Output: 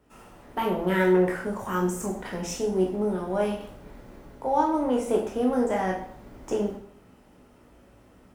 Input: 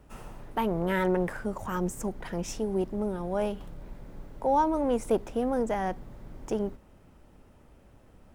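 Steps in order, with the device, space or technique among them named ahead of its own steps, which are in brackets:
far laptop microphone (convolution reverb RT60 0.55 s, pre-delay 14 ms, DRR −1 dB; high-pass filter 130 Hz 6 dB per octave; automatic gain control gain up to 7 dB)
level −6 dB

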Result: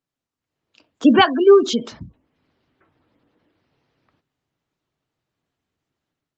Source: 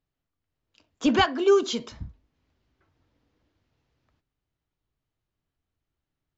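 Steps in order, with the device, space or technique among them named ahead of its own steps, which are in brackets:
dynamic equaliser 250 Hz, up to +3 dB, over −35 dBFS, Q 1.4
noise-suppressed video call (high-pass filter 150 Hz 12 dB per octave; gate on every frequency bin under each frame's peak −25 dB strong; automatic gain control gain up to 10 dB; Opus 20 kbit/s 48,000 Hz)

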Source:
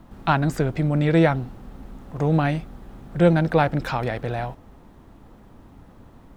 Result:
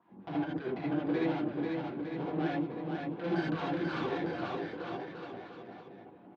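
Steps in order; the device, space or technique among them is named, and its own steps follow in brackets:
0:03.32–0:04.01: flat-topped bell 1,500 Hz +10 dB 1.3 octaves
wah-wah guitar rig (LFO wah 5.4 Hz 240–2,100 Hz, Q 2.3; tube saturation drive 33 dB, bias 0.7; loudspeaker in its box 96–4,100 Hz, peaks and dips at 170 Hz +8 dB, 370 Hz +9 dB, 570 Hz −3 dB, 1,300 Hz −4 dB, 2,000 Hz −6 dB)
bouncing-ball delay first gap 490 ms, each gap 0.85×, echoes 5
reverb whose tail is shaped and stops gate 100 ms rising, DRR −5 dB
level −4.5 dB

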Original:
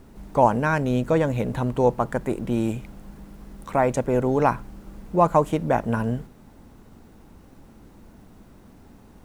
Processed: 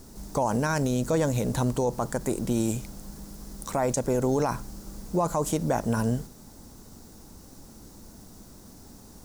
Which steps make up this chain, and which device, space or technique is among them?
over-bright horn tweeter (high shelf with overshoot 3,800 Hz +12 dB, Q 1.5; brickwall limiter −16 dBFS, peak gain reduction 11 dB)

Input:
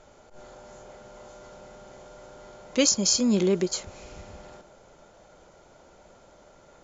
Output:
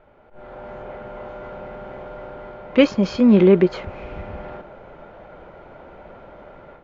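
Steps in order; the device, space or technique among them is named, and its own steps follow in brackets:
action camera in a waterproof case (low-pass filter 2,600 Hz 24 dB per octave; automatic gain control gain up to 12 dB; AAC 48 kbit/s 24,000 Hz)

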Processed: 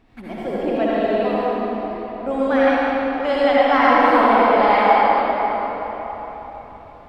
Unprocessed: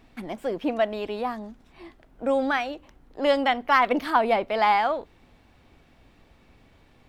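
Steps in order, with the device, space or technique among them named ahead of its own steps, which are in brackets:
swimming-pool hall (convolution reverb RT60 4.2 s, pre-delay 57 ms, DRR −9 dB; high-shelf EQ 3,600 Hz −8 dB)
level −1 dB

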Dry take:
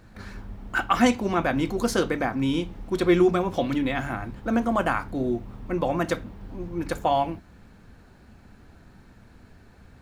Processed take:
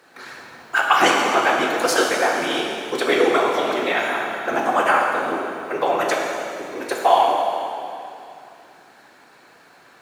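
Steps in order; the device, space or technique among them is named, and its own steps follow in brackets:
whispering ghost (random phases in short frames; high-pass filter 600 Hz 12 dB per octave; convolution reverb RT60 2.6 s, pre-delay 3 ms, DRR −1 dB)
level +6.5 dB

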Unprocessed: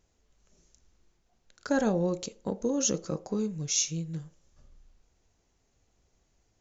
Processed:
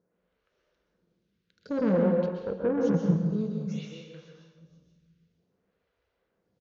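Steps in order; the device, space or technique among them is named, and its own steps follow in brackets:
0:01.79–0:03.30: spectral tilt −3 dB per octave
repeating echo 475 ms, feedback 18%, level −22.5 dB
vibe pedal into a guitar amplifier (phaser with staggered stages 0.55 Hz; tube saturation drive 26 dB, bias 0.55; loudspeaker in its box 80–4,200 Hz, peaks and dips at 180 Hz +10 dB, 490 Hz +8 dB, 780 Hz −6 dB, 1,500 Hz +5 dB)
dense smooth reverb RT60 0.96 s, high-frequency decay 0.9×, pre-delay 110 ms, DRR 1 dB

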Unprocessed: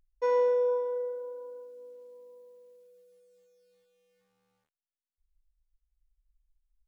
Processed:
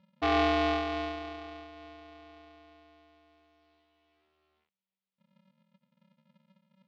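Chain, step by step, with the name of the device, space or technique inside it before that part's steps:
ring modulator pedal into a guitar cabinet (ring modulator with a square carrier 190 Hz; loudspeaker in its box 94–3,900 Hz, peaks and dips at 130 Hz −7 dB, 290 Hz −9 dB, 640 Hz −7 dB, 1,100 Hz −3 dB, 1,600 Hz −8 dB)
level +5 dB

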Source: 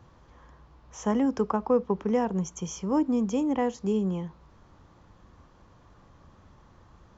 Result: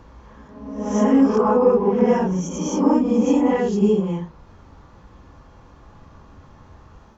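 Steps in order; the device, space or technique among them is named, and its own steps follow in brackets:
reverse reverb (reversed playback; convolution reverb RT60 1.0 s, pre-delay 15 ms, DRR −7.5 dB; reversed playback)

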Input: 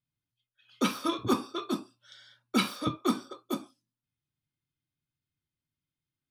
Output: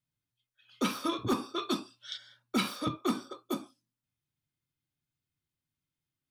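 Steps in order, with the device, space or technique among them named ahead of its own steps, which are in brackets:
clipper into limiter (hard clipping −19 dBFS, distortion −20 dB; brickwall limiter −21.5 dBFS, peak gain reduction 2.5 dB)
0:01.57–0:02.16: parametric band 3,600 Hz +4.5 dB → +14.5 dB 2.4 octaves

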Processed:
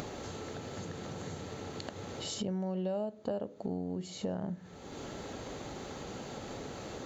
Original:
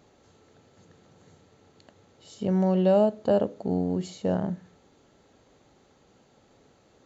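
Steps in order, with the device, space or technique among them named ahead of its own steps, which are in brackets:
upward and downward compression (upward compression, threshold −30 dBFS; downward compressor 5 to 1, threshold −36 dBFS, peak gain reduction 17 dB)
level +2 dB

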